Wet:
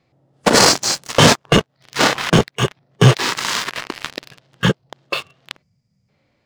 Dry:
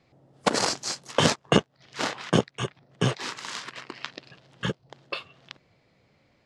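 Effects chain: spectral gain 5.62–6.09, 250–4600 Hz -17 dB; in parallel at -1 dB: level quantiser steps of 14 dB; on the sum: sample leveller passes 3; harmonic-percussive split harmonic +7 dB; gain -2.5 dB

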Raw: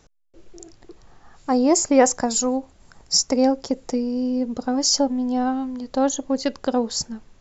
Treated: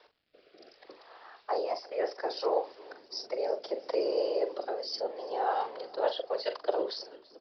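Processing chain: ending faded out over 0.96 s; steep high-pass 440 Hz 72 dB/oct; reverse; compressor 5:1, threshold -30 dBFS, peak gain reduction 17 dB; reverse; whisperiser; crackle 540/s -61 dBFS; rotary speaker horn 0.65 Hz, later 5.5 Hz, at 5.52; doubler 42 ms -10 dB; on a send: frequency-shifting echo 0.334 s, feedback 64%, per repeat -38 Hz, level -22 dB; on the sum: downsampling 11025 Hz; gain +4.5 dB

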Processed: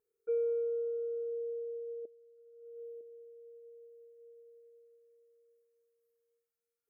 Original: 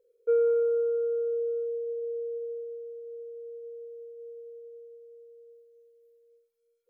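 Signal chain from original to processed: 2.05–3.01 negative-ratio compressor -40 dBFS, ratio -0.5; envelope phaser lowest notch 560 Hz, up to 1300 Hz, full sweep at -30.5 dBFS; notch comb 500 Hz; gain -1.5 dB

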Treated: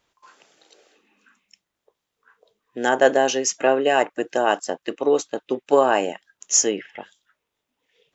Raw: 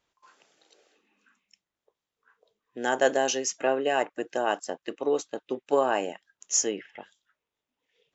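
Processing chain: 2.88–3.44 high shelf 4100 Hz -> 5400 Hz -9.5 dB; gain +7 dB

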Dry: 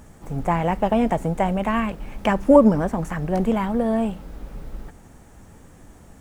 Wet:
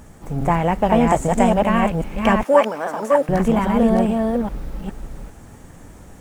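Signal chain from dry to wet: reverse delay 0.408 s, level -2 dB; 1.07–1.54 bell 7500 Hz +12 dB 0.73 oct; 2.43–3.29 HPF 620 Hz 12 dB/oct; gain +3 dB

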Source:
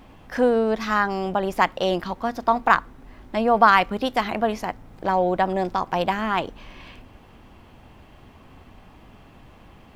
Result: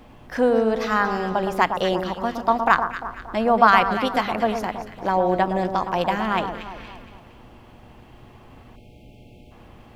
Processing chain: echo with dull and thin repeats by turns 0.116 s, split 1400 Hz, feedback 66%, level -7 dB; spectral delete 8.76–9.51, 670–2100 Hz; buzz 120 Hz, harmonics 7, -54 dBFS -3 dB/oct

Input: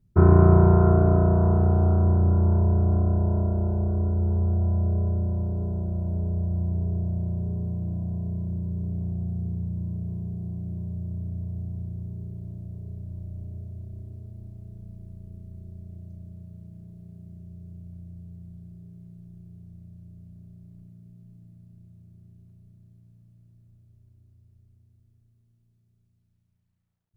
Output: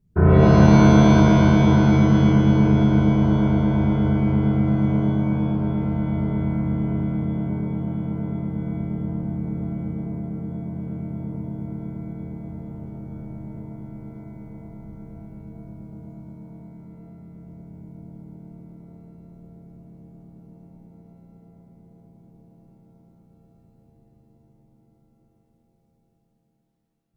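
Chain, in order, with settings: formant shift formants +2 st; shimmer reverb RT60 1.5 s, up +7 st, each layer -2 dB, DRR 0 dB; gain -2 dB

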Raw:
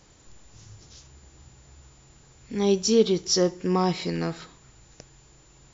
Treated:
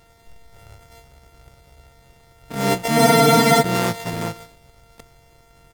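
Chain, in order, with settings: sample sorter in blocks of 64 samples; harmoniser -7 st -3 dB, +5 st -13 dB; spectral freeze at 2.99, 0.63 s

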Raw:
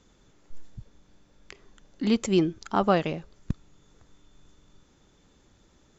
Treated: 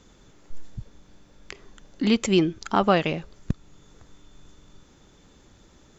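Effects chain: dynamic EQ 2600 Hz, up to +5 dB, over -45 dBFS, Q 1; in parallel at +0.5 dB: compressor, threshold -31 dBFS, peak gain reduction 14.5 dB

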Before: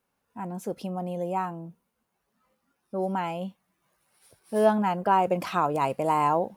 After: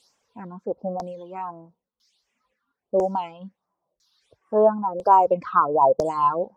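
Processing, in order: graphic EQ 500/1000/2000/8000 Hz +7/+11/-10/+11 dB; added noise blue -54 dBFS; reverb removal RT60 1.8 s; LFO low-pass saw down 1 Hz 490–6100 Hz; phaser stages 6, 1.4 Hz, lowest notch 570–4000 Hz; gain -2 dB

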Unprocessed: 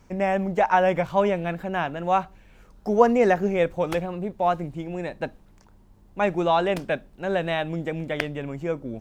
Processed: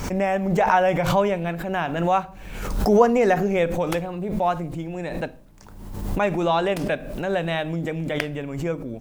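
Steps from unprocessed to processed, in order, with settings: high shelf 6800 Hz +7 dB; reverb RT60 0.45 s, pre-delay 7 ms, DRR 15 dB; backwards sustainer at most 46 dB/s

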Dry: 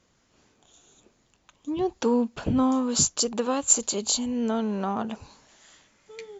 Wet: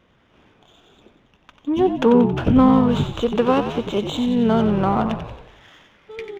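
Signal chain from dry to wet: frequency-shifting echo 91 ms, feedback 54%, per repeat -54 Hz, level -8.5 dB; downsampling 8000 Hz; running maximum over 3 samples; gain +8.5 dB

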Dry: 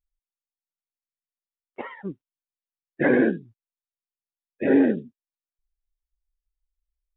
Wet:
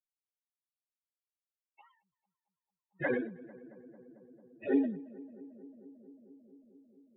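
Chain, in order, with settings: per-bin expansion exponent 3; darkening echo 0.223 s, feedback 83%, low-pass 1400 Hz, level -19 dB; ending taper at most 100 dB/s; gain -6 dB

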